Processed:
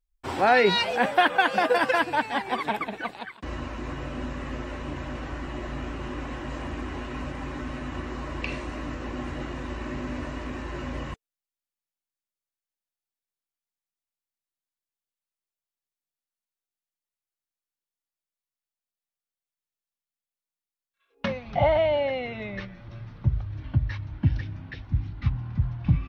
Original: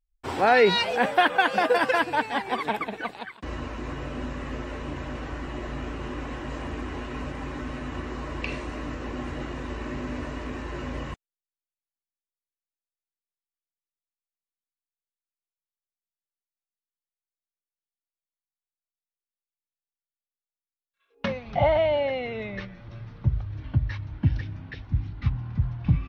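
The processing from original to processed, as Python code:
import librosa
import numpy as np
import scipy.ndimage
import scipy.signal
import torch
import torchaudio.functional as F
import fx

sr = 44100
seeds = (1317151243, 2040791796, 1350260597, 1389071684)

y = fx.notch(x, sr, hz=450.0, q=12.0)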